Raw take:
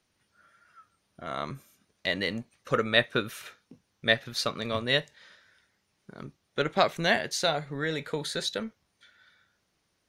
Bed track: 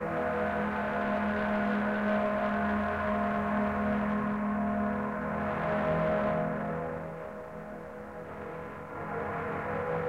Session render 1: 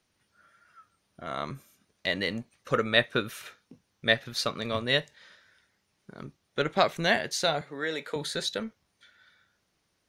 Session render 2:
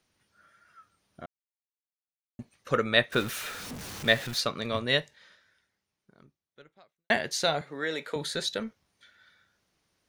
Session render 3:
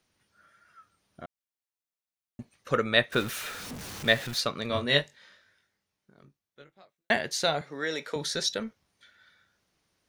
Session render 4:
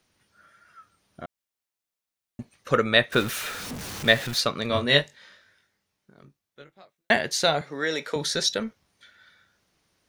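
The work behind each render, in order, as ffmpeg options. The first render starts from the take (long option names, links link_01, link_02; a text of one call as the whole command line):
ffmpeg -i in.wav -filter_complex "[0:a]asettb=1/sr,asplit=3[link_01][link_02][link_03];[link_01]atrim=end=7.614[link_04];[link_02]atrim=start=7.61:end=8.16,asetpts=PTS-STARTPTS,afade=type=in:duration=0.004:curve=qsin,afade=type=out:start_time=0.546:duration=0.004:curve=qsin,highpass=300[link_05];[link_03]atrim=start=8.156[link_06];[link_04][link_05]acrossfade=duration=0.004:curve1=hsin:curve2=qsin[link_07];[link_07][link_06]acrossfade=duration=0.004:curve1=qsin:curve2=hsin" out.wav
ffmpeg -i in.wav -filter_complex "[0:a]asettb=1/sr,asplit=3[link_01][link_02][link_03];[link_01]atrim=end=3.124[link_04];[link_02]atrim=start=3.12:end=4.4,asetpts=PTS-STARTPTS,afade=type=in:duration=0.004:curve=qsin,afade=type=out:start_time=1.276:duration=0.004:curve=qsin,aeval=exprs='val(0)+0.5*0.0188*sgn(val(0))':channel_layout=same[link_05];[link_03]atrim=start=4.396[link_06];[link_04][link_05]acrossfade=duration=0.004:curve1=hsin:curve2=qsin[link_07];[link_07][link_06]acrossfade=duration=0.004:curve1=qsin:curve2=hsin,asplit=4[link_08][link_09][link_10][link_11];[link_08]atrim=end=1.26,asetpts=PTS-STARTPTS,afade=type=out:start_time=1.256:duration=0.004:curve=hsin[link_12];[link_09]atrim=start=1.26:end=2.39,asetpts=PTS-STARTPTS,volume=0[link_13];[link_10]atrim=start=2.39:end=7.1,asetpts=PTS-STARTPTS,afade=type=in:duration=0.004:curve=hsin,afade=type=out:start_time=2.54:duration=2.17:curve=qua[link_14];[link_11]atrim=start=7.1,asetpts=PTS-STARTPTS,afade=type=in:duration=0.004:curve=hsin[link_15];[link_12][link_13][link_14][link_15]concat=n=4:v=0:a=1" out.wav
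ffmpeg -i in.wav -filter_complex "[0:a]asettb=1/sr,asplit=3[link_01][link_02][link_03];[link_01]atrim=end=4.684[link_04];[link_02]atrim=start=4.68:end=7.12,asetpts=PTS-STARTPTS,afade=type=in:duration=0.004:curve=qsin,afade=type=out:start_time=2.436:duration=0.004:curve=qsin,asplit=2[link_05][link_06];[link_06]adelay=21,volume=-4.5dB[link_07];[link_05][link_07]amix=inputs=2:normalize=0,atrim=end_sample=107604[link_08];[link_03]atrim=start=7.116[link_09];[link_04][link_08]acrossfade=duration=0.004:curve1=hsin:curve2=qsin[link_10];[link_10][link_09]acrossfade=duration=0.004:curve1=qsin:curve2=hsin,asettb=1/sr,asplit=3[link_11][link_12][link_13];[link_11]atrim=end=7.644[link_14];[link_12]atrim=start=7.64:end=8.53,asetpts=PTS-STARTPTS,afade=type=in:duration=0.004:curve=qsin,afade=type=out:start_time=0.886:duration=0.004:curve=qsin,equalizer=frequency=5600:width_type=o:width=0.25:gain=13.5[link_15];[link_13]atrim=start=8.526[link_16];[link_14][link_15]acrossfade=duration=0.004:curve1=hsin:curve2=qsin[link_17];[link_17][link_16]acrossfade=duration=0.004:curve1=qsin:curve2=hsin" out.wav
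ffmpeg -i in.wav -af "volume=4.5dB,alimiter=limit=-3dB:level=0:latency=1" out.wav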